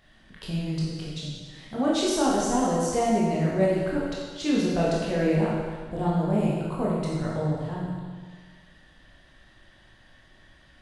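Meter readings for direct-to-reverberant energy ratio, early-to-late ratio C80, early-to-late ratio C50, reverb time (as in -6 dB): -6.0 dB, 1.0 dB, -1.0 dB, 1.6 s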